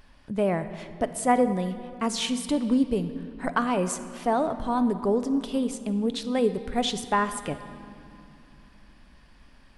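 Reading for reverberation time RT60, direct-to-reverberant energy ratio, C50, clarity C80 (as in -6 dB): 2.7 s, 10.0 dB, 11.5 dB, 12.5 dB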